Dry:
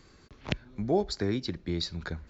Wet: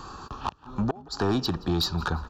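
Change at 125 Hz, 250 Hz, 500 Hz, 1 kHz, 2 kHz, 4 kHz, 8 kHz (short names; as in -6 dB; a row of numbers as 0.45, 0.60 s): +5.0 dB, +3.5 dB, -0.5 dB, +8.0 dB, +3.5 dB, +5.5 dB, n/a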